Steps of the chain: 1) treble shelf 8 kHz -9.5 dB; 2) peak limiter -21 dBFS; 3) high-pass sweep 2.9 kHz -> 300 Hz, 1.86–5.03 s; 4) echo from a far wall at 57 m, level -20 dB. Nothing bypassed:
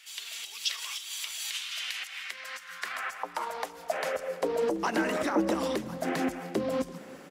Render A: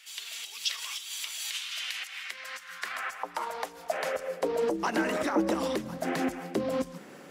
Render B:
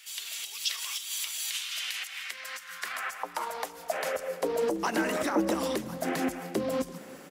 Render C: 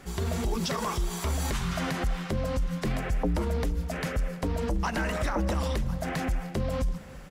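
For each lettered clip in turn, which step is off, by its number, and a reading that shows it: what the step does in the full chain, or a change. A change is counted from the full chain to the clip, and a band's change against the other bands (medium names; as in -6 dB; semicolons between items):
4, echo-to-direct -21.0 dB to none; 1, 8 kHz band +3.5 dB; 3, 125 Hz band +18.5 dB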